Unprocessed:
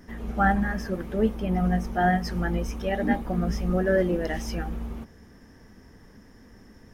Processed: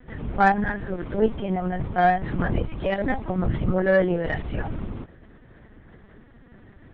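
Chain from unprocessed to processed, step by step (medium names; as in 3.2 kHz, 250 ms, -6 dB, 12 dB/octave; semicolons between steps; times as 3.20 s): LPC vocoder at 8 kHz pitch kept; Chebyshev shaper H 3 -25 dB, 7 -32 dB, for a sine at -8 dBFS; trim +6 dB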